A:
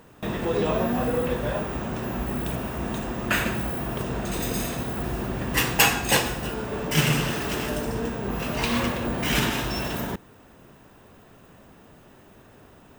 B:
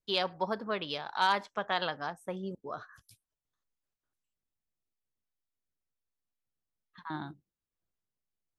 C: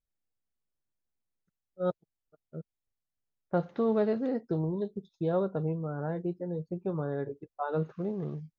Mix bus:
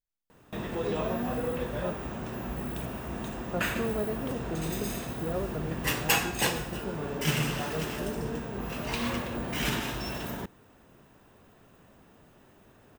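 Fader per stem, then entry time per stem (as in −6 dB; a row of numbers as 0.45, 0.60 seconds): −6.5 dB, muted, −5.0 dB; 0.30 s, muted, 0.00 s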